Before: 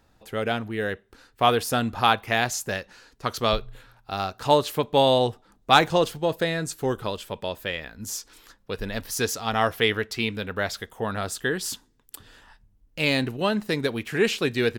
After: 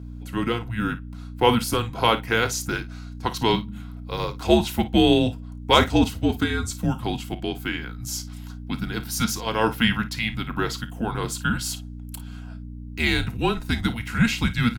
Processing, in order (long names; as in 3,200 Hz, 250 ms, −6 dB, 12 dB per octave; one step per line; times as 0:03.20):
frequency shifter −230 Hz
mains hum 60 Hz, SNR 11 dB
notch comb filter 590 Hz
on a send: ambience of single reflections 31 ms −15.5 dB, 54 ms −15 dB
on the sum: level +2.5 dB